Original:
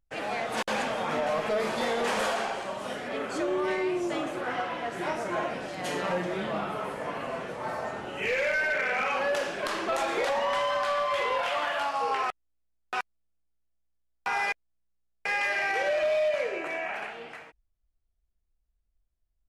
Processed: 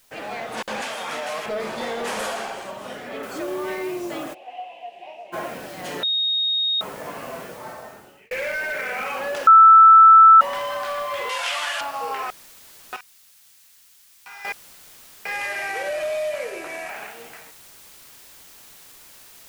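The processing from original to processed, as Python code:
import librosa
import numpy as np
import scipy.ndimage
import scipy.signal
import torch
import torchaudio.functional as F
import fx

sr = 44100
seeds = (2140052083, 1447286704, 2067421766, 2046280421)

y = fx.tilt_eq(x, sr, slope=3.5, at=(0.82, 1.46))
y = fx.high_shelf(y, sr, hz=8300.0, db=10.5, at=(2.05, 2.71))
y = fx.noise_floor_step(y, sr, seeds[0], at_s=3.23, before_db=-58, after_db=-47, tilt_db=0.0)
y = fx.double_bandpass(y, sr, hz=1400.0, octaves=1.9, at=(4.33, 5.32), fade=0.02)
y = fx.weighting(y, sr, curve='ITU-R 468', at=(11.29, 11.81))
y = fx.tone_stack(y, sr, knobs='5-5-5', at=(12.96, 14.45))
y = fx.cvsd(y, sr, bps=64000, at=(15.32, 16.9))
y = fx.edit(y, sr, fx.bleep(start_s=6.03, length_s=0.78, hz=3730.0, db=-19.0),
    fx.fade_out_span(start_s=7.4, length_s=0.91),
    fx.bleep(start_s=9.47, length_s=0.94, hz=1320.0, db=-6.0), tone=tone)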